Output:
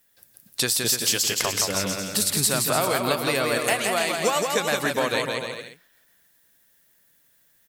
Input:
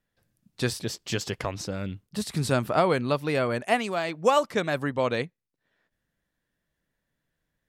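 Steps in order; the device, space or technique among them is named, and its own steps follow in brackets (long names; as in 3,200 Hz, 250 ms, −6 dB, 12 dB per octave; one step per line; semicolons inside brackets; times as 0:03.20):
RIAA equalisation recording
ASMR close-microphone chain (low-shelf EQ 160 Hz +5.5 dB; downward compressor, threshold −30 dBFS, peak gain reduction 13 dB; high-shelf EQ 11,000 Hz +4.5 dB)
bouncing-ball delay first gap 170 ms, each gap 0.75×, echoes 5
level +8.5 dB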